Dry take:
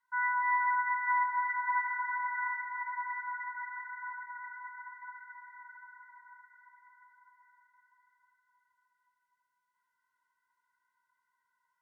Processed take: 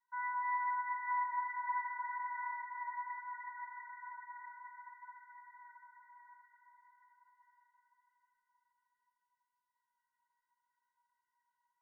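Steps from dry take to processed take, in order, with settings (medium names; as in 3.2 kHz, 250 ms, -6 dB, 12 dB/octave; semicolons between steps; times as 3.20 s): feedback comb 960 Hz, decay 0.15 s, harmonics all, mix 90%; trim +5.5 dB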